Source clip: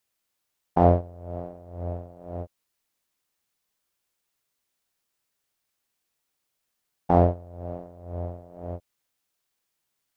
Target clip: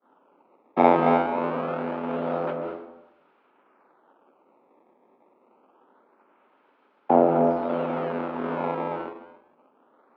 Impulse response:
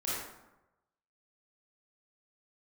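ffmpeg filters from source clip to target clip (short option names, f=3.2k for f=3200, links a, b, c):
-filter_complex "[0:a]aeval=exprs='val(0)+0.5*0.0891*sgn(val(0))':c=same,tiltshelf=f=800:g=3,agate=range=-51dB:threshold=-27dB:ratio=16:detection=peak,afreqshift=-15,asplit=2[a][b];[1:a]atrim=start_sample=2205,lowshelf=f=180:g=11,adelay=144[c];[b][c]afir=irnorm=-1:irlink=0,volume=-9dB[d];[a][d]amix=inputs=2:normalize=0,acrusher=samples=17:mix=1:aa=0.000001:lfo=1:lforange=27.2:lforate=0.25,highpass=f=230:w=0.5412,highpass=f=230:w=1.3066,equalizer=f=250:t=q:w=4:g=6,equalizer=f=380:t=q:w=4:g=5,equalizer=f=540:t=q:w=4:g=5,equalizer=f=890:t=q:w=4:g=8,equalizer=f=1.3k:t=q:w=4:g=6,equalizer=f=1.9k:t=q:w=4:g=-7,lowpass=f=2.4k:w=0.5412,lowpass=f=2.4k:w=1.3066,volume=-4.5dB"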